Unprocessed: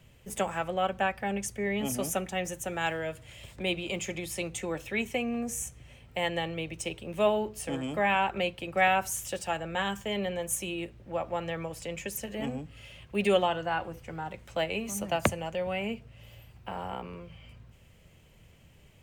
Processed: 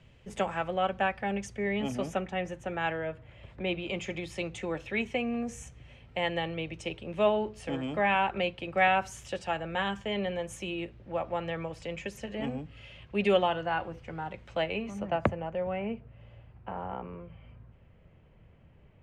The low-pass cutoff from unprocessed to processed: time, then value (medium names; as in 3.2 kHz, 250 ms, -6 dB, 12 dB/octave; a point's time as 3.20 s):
1.68 s 4.4 kHz
2.33 s 2.6 kHz
2.90 s 2.6 kHz
3.30 s 1.5 kHz
4.06 s 4.1 kHz
14.54 s 4.1 kHz
15.24 s 1.6 kHz